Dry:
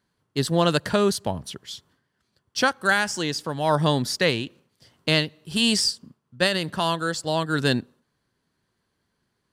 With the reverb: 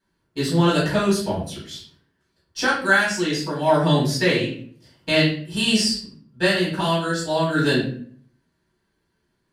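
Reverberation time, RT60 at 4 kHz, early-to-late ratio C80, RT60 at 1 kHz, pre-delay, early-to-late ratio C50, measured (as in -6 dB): 0.50 s, 0.35 s, 8.5 dB, 0.45 s, 4 ms, 4.5 dB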